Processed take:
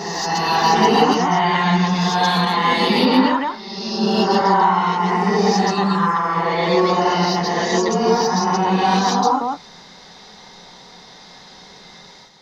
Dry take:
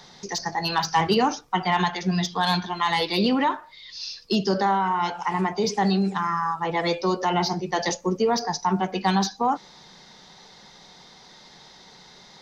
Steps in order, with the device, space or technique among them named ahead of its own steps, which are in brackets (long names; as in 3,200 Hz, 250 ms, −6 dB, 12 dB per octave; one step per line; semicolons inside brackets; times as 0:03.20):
reverse reverb (reversed playback; convolution reverb RT60 1.7 s, pre-delay 115 ms, DRR −7.5 dB; reversed playback)
level −1 dB